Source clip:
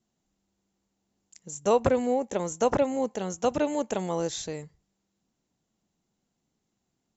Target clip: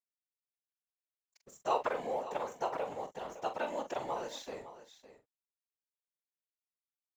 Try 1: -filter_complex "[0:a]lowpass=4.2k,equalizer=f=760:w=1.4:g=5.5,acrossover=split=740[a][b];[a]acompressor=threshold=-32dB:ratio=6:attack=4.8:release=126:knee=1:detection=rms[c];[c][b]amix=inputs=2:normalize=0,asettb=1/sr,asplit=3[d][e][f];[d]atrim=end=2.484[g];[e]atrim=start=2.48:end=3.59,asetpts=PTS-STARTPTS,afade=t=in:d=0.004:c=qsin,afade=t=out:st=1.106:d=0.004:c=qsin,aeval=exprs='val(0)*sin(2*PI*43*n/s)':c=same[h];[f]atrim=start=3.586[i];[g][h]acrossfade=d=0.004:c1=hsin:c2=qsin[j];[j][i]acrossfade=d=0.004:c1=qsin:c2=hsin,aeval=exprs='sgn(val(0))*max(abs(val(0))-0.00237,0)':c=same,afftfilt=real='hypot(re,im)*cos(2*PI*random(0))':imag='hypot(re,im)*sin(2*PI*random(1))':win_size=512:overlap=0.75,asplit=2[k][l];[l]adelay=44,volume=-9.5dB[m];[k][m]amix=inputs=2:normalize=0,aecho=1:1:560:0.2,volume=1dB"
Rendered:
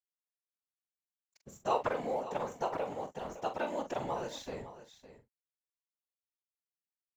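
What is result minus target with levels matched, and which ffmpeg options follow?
250 Hz band +3.5 dB
-filter_complex "[0:a]lowpass=4.2k,equalizer=f=760:w=1.4:g=5.5,acrossover=split=740[a][b];[a]acompressor=threshold=-32dB:ratio=6:attack=4.8:release=126:knee=1:detection=rms,highpass=310[c];[c][b]amix=inputs=2:normalize=0,asettb=1/sr,asplit=3[d][e][f];[d]atrim=end=2.484[g];[e]atrim=start=2.48:end=3.59,asetpts=PTS-STARTPTS,afade=t=in:d=0.004:c=qsin,afade=t=out:st=1.106:d=0.004:c=qsin,aeval=exprs='val(0)*sin(2*PI*43*n/s)':c=same[h];[f]atrim=start=3.586[i];[g][h]acrossfade=d=0.004:c1=hsin:c2=qsin[j];[j][i]acrossfade=d=0.004:c1=qsin:c2=hsin,aeval=exprs='sgn(val(0))*max(abs(val(0))-0.00237,0)':c=same,afftfilt=real='hypot(re,im)*cos(2*PI*random(0))':imag='hypot(re,im)*sin(2*PI*random(1))':win_size=512:overlap=0.75,asplit=2[k][l];[l]adelay=44,volume=-9.5dB[m];[k][m]amix=inputs=2:normalize=0,aecho=1:1:560:0.2,volume=1dB"

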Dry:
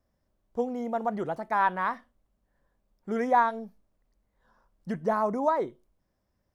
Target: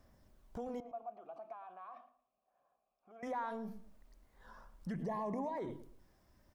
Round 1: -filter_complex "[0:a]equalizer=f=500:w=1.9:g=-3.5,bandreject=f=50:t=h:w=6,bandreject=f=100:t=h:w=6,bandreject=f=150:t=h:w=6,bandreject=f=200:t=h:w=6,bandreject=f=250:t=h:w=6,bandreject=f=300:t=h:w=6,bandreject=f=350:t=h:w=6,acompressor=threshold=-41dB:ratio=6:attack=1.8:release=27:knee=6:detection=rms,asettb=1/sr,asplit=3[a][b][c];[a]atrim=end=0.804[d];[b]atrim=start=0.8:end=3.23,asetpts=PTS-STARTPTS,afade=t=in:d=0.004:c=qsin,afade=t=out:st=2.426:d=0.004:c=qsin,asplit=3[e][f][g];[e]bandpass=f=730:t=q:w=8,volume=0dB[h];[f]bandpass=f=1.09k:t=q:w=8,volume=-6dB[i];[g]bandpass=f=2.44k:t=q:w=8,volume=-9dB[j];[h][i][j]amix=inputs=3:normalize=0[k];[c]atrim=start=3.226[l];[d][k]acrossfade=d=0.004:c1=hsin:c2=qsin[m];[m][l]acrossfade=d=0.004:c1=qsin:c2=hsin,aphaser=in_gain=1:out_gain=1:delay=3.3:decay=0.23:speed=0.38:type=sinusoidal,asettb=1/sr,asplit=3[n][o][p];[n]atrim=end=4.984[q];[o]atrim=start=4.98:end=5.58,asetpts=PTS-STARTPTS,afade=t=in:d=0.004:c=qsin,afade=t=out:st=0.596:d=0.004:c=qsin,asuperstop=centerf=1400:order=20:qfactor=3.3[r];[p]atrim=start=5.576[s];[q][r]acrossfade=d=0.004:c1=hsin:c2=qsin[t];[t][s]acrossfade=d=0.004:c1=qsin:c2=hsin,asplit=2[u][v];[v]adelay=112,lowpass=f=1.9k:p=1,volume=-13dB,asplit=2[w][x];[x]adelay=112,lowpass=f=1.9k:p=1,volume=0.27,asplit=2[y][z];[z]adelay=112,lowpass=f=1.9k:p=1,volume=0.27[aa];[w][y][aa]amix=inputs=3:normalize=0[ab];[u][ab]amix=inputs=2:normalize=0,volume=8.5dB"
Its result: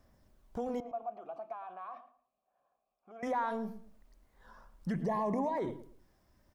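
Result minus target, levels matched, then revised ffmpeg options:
compressor: peak gain reduction -6 dB
-filter_complex "[0:a]equalizer=f=500:w=1.9:g=-3.5,bandreject=f=50:t=h:w=6,bandreject=f=100:t=h:w=6,bandreject=f=150:t=h:w=6,bandreject=f=200:t=h:w=6,bandreject=f=250:t=h:w=6,bandreject=f=300:t=h:w=6,bandreject=f=350:t=h:w=6,acompressor=threshold=-48.5dB:ratio=6:attack=1.8:release=27:knee=6:detection=rms,asettb=1/sr,asplit=3[a][b][c];[a]atrim=end=0.804[d];[b]atrim=start=0.8:end=3.23,asetpts=PTS-STARTPTS,afade=t=in:d=0.004:c=qsin,afade=t=out:st=2.426:d=0.004:c=qsin,asplit=3[e][f][g];[e]bandpass=f=730:t=q:w=8,volume=0dB[h];[f]bandpass=f=1.09k:t=q:w=8,volume=-6dB[i];[g]bandpass=f=2.44k:t=q:w=8,volume=-9dB[j];[h][i][j]amix=inputs=3:normalize=0[k];[c]atrim=start=3.226[l];[d][k]acrossfade=d=0.004:c1=hsin:c2=qsin[m];[m][l]acrossfade=d=0.004:c1=qsin:c2=hsin,aphaser=in_gain=1:out_gain=1:delay=3.3:decay=0.23:speed=0.38:type=sinusoidal,asettb=1/sr,asplit=3[n][o][p];[n]atrim=end=4.984[q];[o]atrim=start=4.98:end=5.58,asetpts=PTS-STARTPTS,afade=t=in:d=0.004:c=qsin,afade=t=out:st=0.596:d=0.004:c=qsin,asuperstop=centerf=1400:order=20:qfactor=3.3[r];[p]atrim=start=5.576[s];[q][r]acrossfade=d=0.004:c1=hsin:c2=qsin[t];[t][s]acrossfade=d=0.004:c1=qsin:c2=hsin,asplit=2[u][v];[v]adelay=112,lowpass=f=1.9k:p=1,volume=-13dB,asplit=2[w][x];[x]adelay=112,lowpass=f=1.9k:p=1,volume=0.27,asplit=2[y][z];[z]adelay=112,lowpass=f=1.9k:p=1,volume=0.27[aa];[w][y][aa]amix=inputs=3:normalize=0[ab];[u][ab]amix=inputs=2:normalize=0,volume=8.5dB"

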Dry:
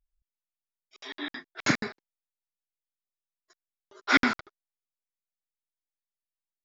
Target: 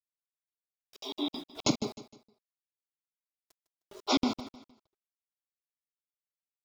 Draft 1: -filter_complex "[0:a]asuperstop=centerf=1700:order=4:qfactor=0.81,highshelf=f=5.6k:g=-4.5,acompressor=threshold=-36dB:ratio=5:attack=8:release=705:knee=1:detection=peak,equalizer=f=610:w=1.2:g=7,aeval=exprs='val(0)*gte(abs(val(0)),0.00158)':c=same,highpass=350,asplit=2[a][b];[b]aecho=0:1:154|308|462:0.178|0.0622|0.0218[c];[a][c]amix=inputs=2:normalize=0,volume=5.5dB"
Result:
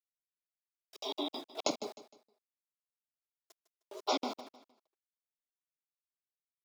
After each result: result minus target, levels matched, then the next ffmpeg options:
compressor: peak gain reduction +7 dB; 250 Hz band -5.0 dB; 500 Hz band +4.5 dB
-filter_complex "[0:a]asuperstop=centerf=1700:order=4:qfactor=0.81,highshelf=f=5.6k:g=-4.5,acompressor=threshold=-27.5dB:ratio=5:attack=8:release=705:knee=1:detection=peak,equalizer=f=610:w=1.2:g=7,aeval=exprs='val(0)*gte(abs(val(0)),0.00158)':c=same,highpass=350,asplit=2[a][b];[b]aecho=0:1:154|308|462:0.178|0.0622|0.0218[c];[a][c]amix=inputs=2:normalize=0,volume=5.5dB"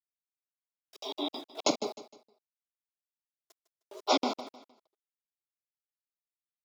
250 Hz band -4.5 dB; 500 Hz band +4.5 dB
-filter_complex "[0:a]asuperstop=centerf=1700:order=4:qfactor=0.81,highshelf=f=5.6k:g=-4.5,acompressor=threshold=-27.5dB:ratio=5:attack=8:release=705:knee=1:detection=peak,equalizer=f=610:w=1.2:g=7,aeval=exprs='val(0)*gte(abs(val(0)),0.00158)':c=same,asplit=2[a][b];[b]aecho=0:1:154|308|462:0.178|0.0622|0.0218[c];[a][c]amix=inputs=2:normalize=0,volume=5.5dB"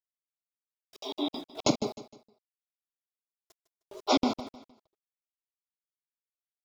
500 Hz band +3.5 dB
-filter_complex "[0:a]asuperstop=centerf=1700:order=4:qfactor=0.81,highshelf=f=5.6k:g=-4.5,acompressor=threshold=-27.5dB:ratio=5:attack=8:release=705:knee=1:detection=peak,aeval=exprs='val(0)*gte(abs(val(0)),0.00158)':c=same,asplit=2[a][b];[b]aecho=0:1:154|308|462:0.178|0.0622|0.0218[c];[a][c]amix=inputs=2:normalize=0,volume=5.5dB"

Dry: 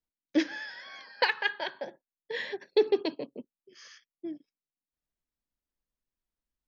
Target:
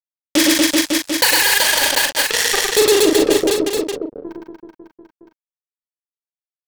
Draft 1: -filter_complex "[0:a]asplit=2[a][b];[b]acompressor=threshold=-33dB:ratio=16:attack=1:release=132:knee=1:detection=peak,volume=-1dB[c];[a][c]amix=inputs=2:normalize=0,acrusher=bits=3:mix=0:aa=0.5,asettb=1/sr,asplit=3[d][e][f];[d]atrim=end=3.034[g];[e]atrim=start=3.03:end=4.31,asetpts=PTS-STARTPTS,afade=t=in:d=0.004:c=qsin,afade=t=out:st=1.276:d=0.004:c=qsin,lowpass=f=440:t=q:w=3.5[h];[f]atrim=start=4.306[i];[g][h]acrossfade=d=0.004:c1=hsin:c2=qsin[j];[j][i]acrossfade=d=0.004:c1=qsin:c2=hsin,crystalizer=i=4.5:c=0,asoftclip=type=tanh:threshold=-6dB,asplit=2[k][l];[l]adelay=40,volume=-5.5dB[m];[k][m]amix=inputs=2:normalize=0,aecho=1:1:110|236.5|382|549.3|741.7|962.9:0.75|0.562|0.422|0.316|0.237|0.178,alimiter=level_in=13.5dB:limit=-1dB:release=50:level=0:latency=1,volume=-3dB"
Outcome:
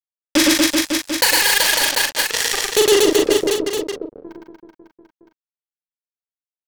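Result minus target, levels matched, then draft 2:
compressor: peak gain reduction +10 dB
-filter_complex "[0:a]asplit=2[a][b];[b]acompressor=threshold=-22.5dB:ratio=16:attack=1:release=132:knee=1:detection=peak,volume=-1dB[c];[a][c]amix=inputs=2:normalize=0,acrusher=bits=3:mix=0:aa=0.5,asettb=1/sr,asplit=3[d][e][f];[d]atrim=end=3.034[g];[e]atrim=start=3.03:end=4.31,asetpts=PTS-STARTPTS,afade=t=in:d=0.004:c=qsin,afade=t=out:st=1.276:d=0.004:c=qsin,lowpass=f=440:t=q:w=3.5[h];[f]atrim=start=4.306[i];[g][h]acrossfade=d=0.004:c1=hsin:c2=qsin[j];[j][i]acrossfade=d=0.004:c1=qsin:c2=hsin,crystalizer=i=4.5:c=0,asoftclip=type=tanh:threshold=-6dB,asplit=2[k][l];[l]adelay=40,volume=-5.5dB[m];[k][m]amix=inputs=2:normalize=0,aecho=1:1:110|236.5|382|549.3|741.7|962.9:0.75|0.562|0.422|0.316|0.237|0.178,alimiter=level_in=13.5dB:limit=-1dB:release=50:level=0:latency=1,volume=-3dB"

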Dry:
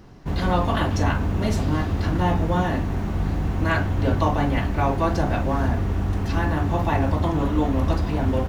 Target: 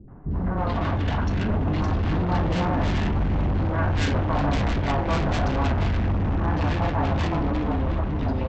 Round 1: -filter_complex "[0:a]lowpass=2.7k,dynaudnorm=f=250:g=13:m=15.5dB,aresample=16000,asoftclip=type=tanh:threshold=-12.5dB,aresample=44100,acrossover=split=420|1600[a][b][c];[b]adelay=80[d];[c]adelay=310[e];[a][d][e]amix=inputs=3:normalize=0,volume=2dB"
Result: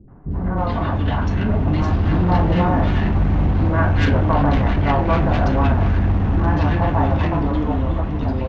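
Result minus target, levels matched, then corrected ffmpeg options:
soft clip: distortion -7 dB
-filter_complex "[0:a]lowpass=2.7k,dynaudnorm=f=250:g=13:m=15.5dB,aresample=16000,asoftclip=type=tanh:threshold=-22dB,aresample=44100,acrossover=split=420|1600[a][b][c];[b]adelay=80[d];[c]adelay=310[e];[a][d][e]amix=inputs=3:normalize=0,volume=2dB"

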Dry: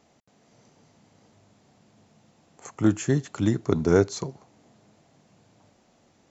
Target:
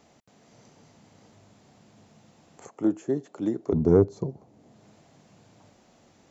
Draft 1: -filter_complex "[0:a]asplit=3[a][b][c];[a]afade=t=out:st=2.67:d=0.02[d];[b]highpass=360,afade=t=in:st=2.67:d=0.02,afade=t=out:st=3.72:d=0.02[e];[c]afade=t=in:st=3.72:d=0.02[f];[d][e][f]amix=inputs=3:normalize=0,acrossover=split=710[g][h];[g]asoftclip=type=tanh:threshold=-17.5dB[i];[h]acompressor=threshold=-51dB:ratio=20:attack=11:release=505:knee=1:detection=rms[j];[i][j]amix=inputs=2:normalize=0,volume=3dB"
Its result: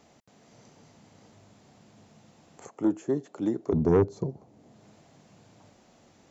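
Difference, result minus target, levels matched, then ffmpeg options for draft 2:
soft clip: distortion +10 dB
-filter_complex "[0:a]asplit=3[a][b][c];[a]afade=t=out:st=2.67:d=0.02[d];[b]highpass=360,afade=t=in:st=2.67:d=0.02,afade=t=out:st=3.72:d=0.02[e];[c]afade=t=in:st=3.72:d=0.02[f];[d][e][f]amix=inputs=3:normalize=0,acrossover=split=710[g][h];[g]asoftclip=type=tanh:threshold=-10dB[i];[h]acompressor=threshold=-51dB:ratio=20:attack=11:release=505:knee=1:detection=rms[j];[i][j]amix=inputs=2:normalize=0,volume=3dB"

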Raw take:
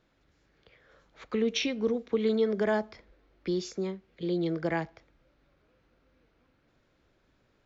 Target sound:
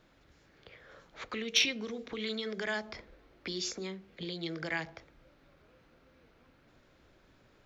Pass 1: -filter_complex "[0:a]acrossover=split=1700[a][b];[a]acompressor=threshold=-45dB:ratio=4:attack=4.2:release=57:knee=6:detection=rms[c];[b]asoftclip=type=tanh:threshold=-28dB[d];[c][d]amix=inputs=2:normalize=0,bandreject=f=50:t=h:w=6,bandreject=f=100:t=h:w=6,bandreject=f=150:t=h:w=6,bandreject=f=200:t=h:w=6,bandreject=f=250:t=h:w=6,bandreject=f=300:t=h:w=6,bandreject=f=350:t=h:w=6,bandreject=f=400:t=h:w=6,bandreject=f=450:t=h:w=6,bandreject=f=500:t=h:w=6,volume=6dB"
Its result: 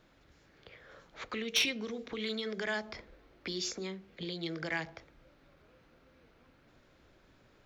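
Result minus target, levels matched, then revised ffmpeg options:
soft clip: distortion +12 dB
-filter_complex "[0:a]acrossover=split=1700[a][b];[a]acompressor=threshold=-45dB:ratio=4:attack=4.2:release=57:knee=6:detection=rms[c];[b]asoftclip=type=tanh:threshold=-19dB[d];[c][d]amix=inputs=2:normalize=0,bandreject=f=50:t=h:w=6,bandreject=f=100:t=h:w=6,bandreject=f=150:t=h:w=6,bandreject=f=200:t=h:w=6,bandreject=f=250:t=h:w=6,bandreject=f=300:t=h:w=6,bandreject=f=350:t=h:w=6,bandreject=f=400:t=h:w=6,bandreject=f=450:t=h:w=6,bandreject=f=500:t=h:w=6,volume=6dB"

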